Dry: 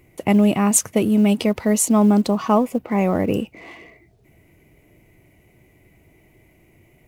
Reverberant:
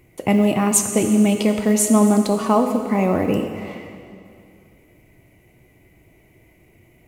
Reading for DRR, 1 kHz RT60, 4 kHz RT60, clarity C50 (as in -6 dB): 5.0 dB, 2.4 s, 2.2 s, 6.5 dB